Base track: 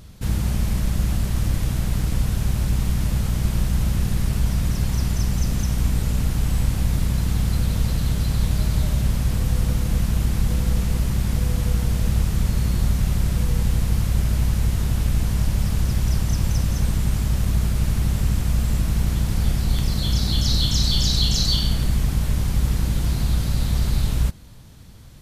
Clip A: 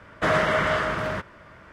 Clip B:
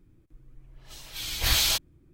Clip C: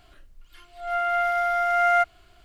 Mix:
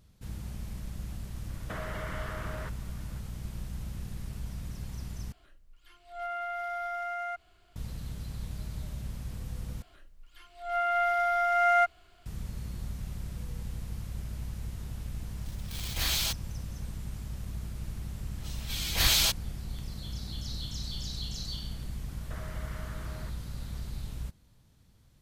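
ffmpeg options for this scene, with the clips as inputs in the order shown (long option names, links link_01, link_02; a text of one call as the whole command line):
ffmpeg -i bed.wav -i cue0.wav -i cue1.wav -i cue2.wav -filter_complex "[1:a]asplit=2[link_01][link_02];[3:a]asplit=2[link_03][link_04];[2:a]asplit=2[link_05][link_06];[0:a]volume=-17.5dB[link_07];[link_01]acompressor=threshold=-26dB:ratio=6:attack=3.2:release=140:knee=1:detection=peak[link_08];[link_03]alimiter=limit=-20.5dB:level=0:latency=1:release=71[link_09];[link_04]bandreject=frequency=50:width_type=h:width=6,bandreject=frequency=100:width_type=h:width=6,bandreject=frequency=150:width_type=h:width=6,bandreject=frequency=200:width_type=h:width=6,bandreject=frequency=250:width_type=h:width=6,bandreject=frequency=300:width_type=h:width=6,bandreject=frequency=350:width_type=h:width=6,bandreject=frequency=400:width_type=h:width=6,bandreject=frequency=450:width_type=h:width=6[link_10];[link_05]acrusher=bits=6:dc=4:mix=0:aa=0.000001[link_11];[link_02]acompressor=threshold=-32dB:ratio=6:attack=3.2:release=140:knee=1:detection=peak[link_12];[link_07]asplit=3[link_13][link_14][link_15];[link_13]atrim=end=5.324[link_16];[link_09]atrim=end=2.44,asetpts=PTS-STARTPTS,volume=-7.5dB[link_17];[link_14]atrim=start=7.756:end=9.824[link_18];[link_10]atrim=end=2.44,asetpts=PTS-STARTPTS,volume=-3.5dB[link_19];[link_15]atrim=start=12.256[link_20];[link_08]atrim=end=1.72,asetpts=PTS-STARTPTS,volume=-10dB,afade=type=in:duration=0.004:curve=hsin,afade=type=out:start_time=1.716:duration=0.004:curve=hsin,adelay=1480[link_21];[link_11]atrim=end=2.13,asetpts=PTS-STARTPTS,volume=-6.5dB,afade=type=in:duration=0.004:curve=hsin,afade=type=out:start_time=2.126:duration=0.004:curve=hsin,adelay=14550[link_22];[link_06]atrim=end=2.13,asetpts=PTS-STARTPTS,volume=-1dB,afade=type=in:duration=0.004:curve=hsin,afade=type=out:start_time=2.126:duration=0.004:curve=hsin,adelay=17540[link_23];[link_12]atrim=end=1.72,asetpts=PTS-STARTPTS,volume=-12.5dB,afade=type=in:duration=0.004:curve=hsin,afade=type=out:start_time=1.716:duration=0.004:curve=hsin,adelay=22090[link_24];[link_16][link_17]acrossfade=duration=0.004:curve1=hsin:curve2=hsin[link_25];[link_25][link_18]acrossfade=duration=0.004:curve1=hsin:curve2=hsin[link_26];[link_26][link_19]acrossfade=duration=0.004:curve1=hsin:curve2=hsin[link_27];[link_27][link_20]acrossfade=duration=0.004:curve1=hsin:curve2=hsin[link_28];[link_28][link_21][link_22][link_23][link_24]amix=inputs=5:normalize=0" out.wav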